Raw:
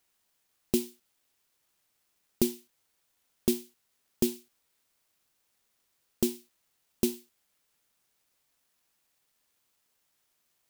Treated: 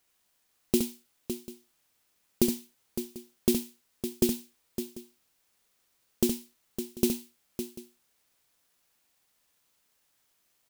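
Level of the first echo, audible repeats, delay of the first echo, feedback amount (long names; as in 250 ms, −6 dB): −6.0 dB, 3, 68 ms, repeats not evenly spaced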